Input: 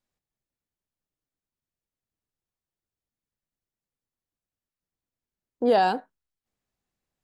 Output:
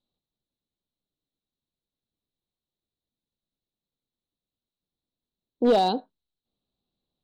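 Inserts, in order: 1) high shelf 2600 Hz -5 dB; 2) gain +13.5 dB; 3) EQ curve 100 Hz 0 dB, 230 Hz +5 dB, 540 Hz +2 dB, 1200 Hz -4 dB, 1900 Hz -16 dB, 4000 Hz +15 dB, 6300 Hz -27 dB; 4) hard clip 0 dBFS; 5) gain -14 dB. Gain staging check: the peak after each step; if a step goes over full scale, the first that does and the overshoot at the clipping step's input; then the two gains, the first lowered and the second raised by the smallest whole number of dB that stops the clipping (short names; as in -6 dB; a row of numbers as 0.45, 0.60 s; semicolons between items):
-11.0, +2.5, +5.0, 0.0, -14.0 dBFS; step 2, 5.0 dB; step 2 +8.5 dB, step 5 -9 dB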